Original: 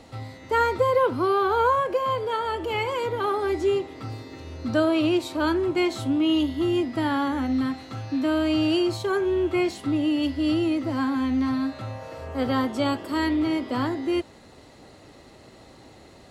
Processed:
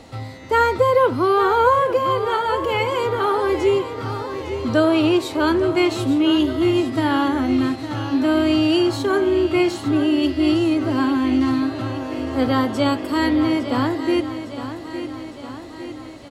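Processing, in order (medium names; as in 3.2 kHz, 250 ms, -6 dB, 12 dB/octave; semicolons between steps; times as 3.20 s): feedback delay 858 ms, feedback 60%, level -11 dB; trim +5 dB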